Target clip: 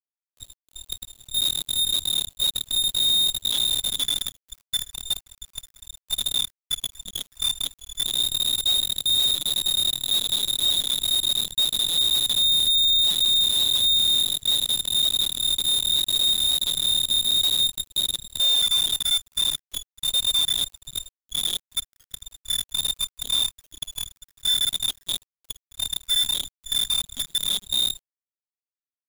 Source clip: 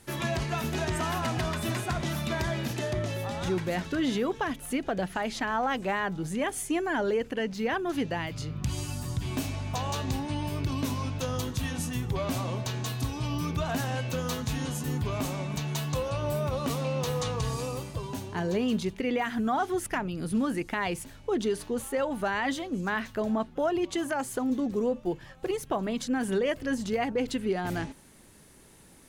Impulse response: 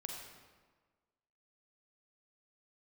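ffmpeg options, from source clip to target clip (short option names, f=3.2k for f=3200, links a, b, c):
-filter_complex "[0:a]asettb=1/sr,asplit=3[a][b][c];[a]atrim=end=14.564[d];[b]atrim=start=14.56:end=16.94,asetpts=PTS-STARTPTS,afade=t=in:d=0.004:c=qsin,afade=t=out:st=2.376:d=0.004:c=qsin,aemphasis=mode=production:type=75fm[e];[c]atrim=start=16.936[f];[d][e]acrossfade=d=0.004:c1=hsin:c2=qsin[g];[g][f]acrossfade=d=0.004:c1=qsin:c2=hsin[h];[1:a]atrim=start_sample=2205,atrim=end_sample=6174[i];[h][i]afir=irnorm=-1:irlink=0,tremolo=f=38:d=0.788,aecho=1:1:332|664:0.0631|0.0139,flanger=delay=15.5:depth=3.5:speed=2.1,asubboost=boost=7.5:cutoff=210,lowpass=f=3.2k:t=q:w=0.5098,lowpass=f=3.2k:t=q:w=0.6013,lowpass=f=3.2k:t=q:w=0.9,lowpass=f=3.2k:t=q:w=2.563,afreqshift=-3800,asoftclip=type=tanh:threshold=-26.5dB,afftfilt=real='re*gte(hypot(re,im),0.112)':imag='im*gte(hypot(re,im),0.112)':win_size=1024:overlap=0.75,aeval=exprs='0.0668*(cos(1*acos(clip(val(0)/0.0668,-1,1)))-cos(1*PI/2))+0.00211*(cos(4*acos(clip(val(0)/0.0668,-1,1)))-cos(4*PI/2))+0.00119*(cos(6*acos(clip(val(0)/0.0668,-1,1)))-cos(6*PI/2))+0.0133*(cos(7*acos(clip(val(0)/0.0668,-1,1)))-cos(7*PI/2))':c=same,highpass=f=74:w=0.5412,highpass=f=74:w=1.3066,acrusher=bits=6:dc=4:mix=0:aa=0.000001,volume=8dB"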